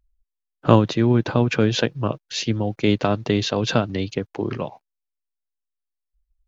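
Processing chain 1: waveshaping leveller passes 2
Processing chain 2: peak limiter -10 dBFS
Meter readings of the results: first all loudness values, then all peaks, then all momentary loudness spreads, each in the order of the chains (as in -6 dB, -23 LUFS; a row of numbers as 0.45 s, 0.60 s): -15.5 LUFS, -24.0 LUFS; -1.0 dBFS, -10.0 dBFS; 8 LU, 7 LU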